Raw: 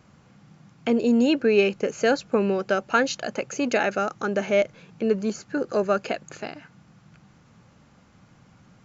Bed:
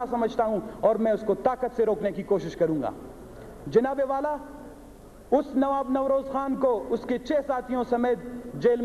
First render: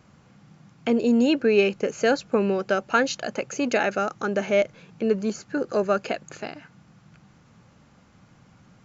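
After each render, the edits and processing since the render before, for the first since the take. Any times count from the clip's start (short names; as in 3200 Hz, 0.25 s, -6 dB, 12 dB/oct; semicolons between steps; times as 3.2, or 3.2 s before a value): nothing audible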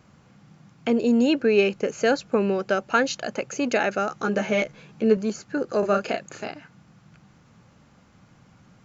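4.08–5.17 doubler 14 ms -3 dB; 5.79–6.51 doubler 35 ms -5 dB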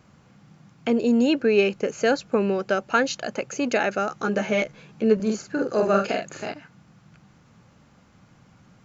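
5.15–6.53 doubler 46 ms -3 dB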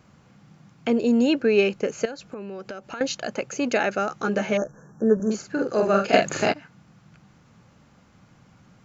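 2.05–3.01 compressor 8:1, threshold -32 dBFS; 4.57–5.31 brick-wall FIR band-stop 1800–5400 Hz; 6.13–6.53 gain +10 dB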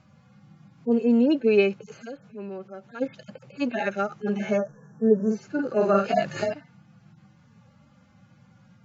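median-filter separation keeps harmonic; LPF 6300 Hz 12 dB/oct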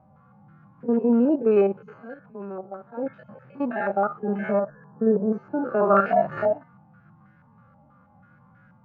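stepped spectrum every 50 ms; stepped low-pass 6.2 Hz 800–1600 Hz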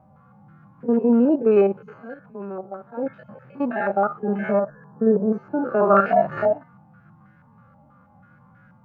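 gain +2.5 dB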